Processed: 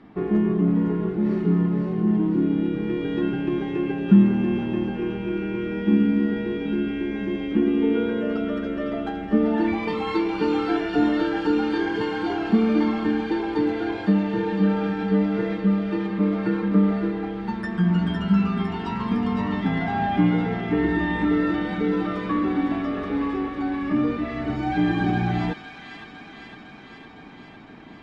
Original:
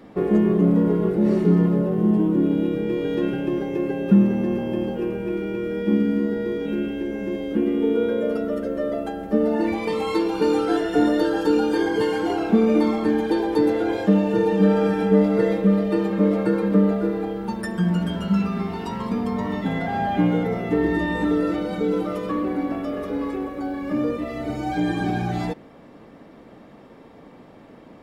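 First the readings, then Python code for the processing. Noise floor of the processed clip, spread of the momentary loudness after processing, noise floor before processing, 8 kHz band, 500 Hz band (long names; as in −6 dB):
−43 dBFS, 7 LU, −46 dBFS, can't be measured, −5.0 dB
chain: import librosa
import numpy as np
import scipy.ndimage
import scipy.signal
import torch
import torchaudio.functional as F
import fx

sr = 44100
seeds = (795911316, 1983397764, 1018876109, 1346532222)

p1 = scipy.signal.sosfilt(scipy.signal.butter(2, 3500.0, 'lowpass', fs=sr, output='sos'), x)
p2 = fx.peak_eq(p1, sr, hz=530.0, db=-14.0, octaves=0.39)
p3 = fx.rider(p2, sr, range_db=3, speed_s=2.0)
y = p3 + fx.echo_wet_highpass(p3, sr, ms=507, feedback_pct=71, hz=1800.0, wet_db=-5.0, dry=0)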